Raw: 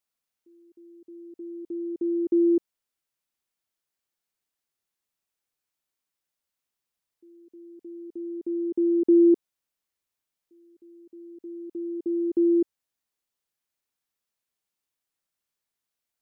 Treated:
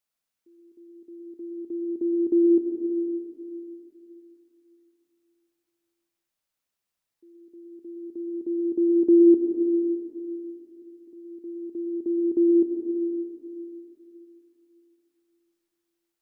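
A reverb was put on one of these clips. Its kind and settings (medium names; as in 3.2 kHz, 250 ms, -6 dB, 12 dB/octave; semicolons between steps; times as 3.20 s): algorithmic reverb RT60 3.1 s, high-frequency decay 0.65×, pre-delay 55 ms, DRR 2.5 dB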